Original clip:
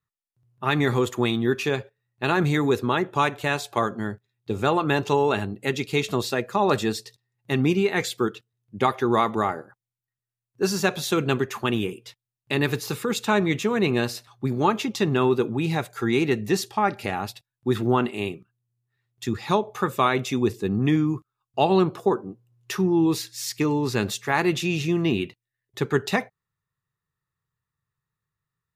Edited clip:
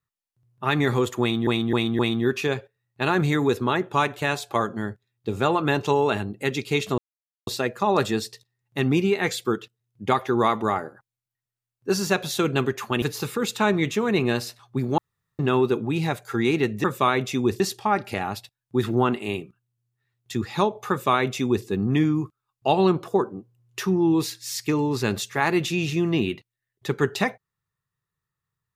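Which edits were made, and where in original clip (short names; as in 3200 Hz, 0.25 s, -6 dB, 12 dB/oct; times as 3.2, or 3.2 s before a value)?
1.21–1.47 loop, 4 plays
6.2 insert silence 0.49 s
11.75–12.7 cut
14.66–15.07 room tone
19.82–20.58 copy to 16.52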